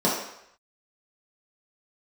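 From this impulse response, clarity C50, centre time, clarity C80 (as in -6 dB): 2.5 dB, 49 ms, 6.0 dB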